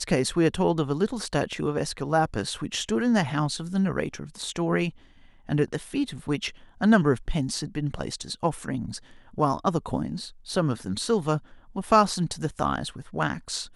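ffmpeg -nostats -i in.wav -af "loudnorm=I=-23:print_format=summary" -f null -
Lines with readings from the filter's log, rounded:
Input Integrated:    -26.6 LUFS
Input True Peak:      -4.9 dBTP
Input LRA:             2.1 LU
Input Threshold:     -36.9 LUFS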